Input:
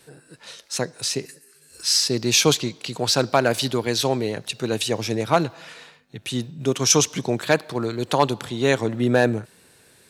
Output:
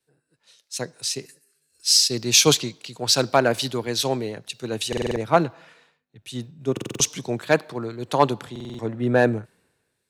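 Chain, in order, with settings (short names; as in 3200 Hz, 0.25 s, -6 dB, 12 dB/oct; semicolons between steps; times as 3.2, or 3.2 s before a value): stuck buffer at 4.88/6.72/8.51, samples 2048, times 5; three-band expander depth 70%; gain -3 dB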